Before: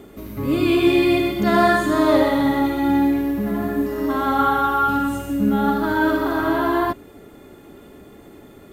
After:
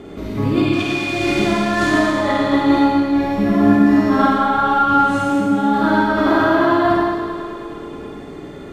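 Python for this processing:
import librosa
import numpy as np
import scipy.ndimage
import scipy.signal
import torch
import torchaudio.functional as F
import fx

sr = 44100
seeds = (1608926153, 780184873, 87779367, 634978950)

y = fx.quant_companded(x, sr, bits=4, at=(0.73, 2.06))
y = fx.highpass(y, sr, hz=120.0, slope=24, at=(4.94, 6.02))
y = fx.over_compress(y, sr, threshold_db=-22.0, ratio=-1.0)
y = scipy.signal.sosfilt(scipy.signal.butter(2, 5700.0, 'lowpass', fs=sr, output='sos'), y)
y = fx.echo_heads(y, sr, ms=105, heads='first and second', feedback_pct=65, wet_db=-13)
y = fx.rev_schroeder(y, sr, rt60_s=1.1, comb_ms=38, drr_db=-2.5)
y = y * librosa.db_to_amplitude(2.0)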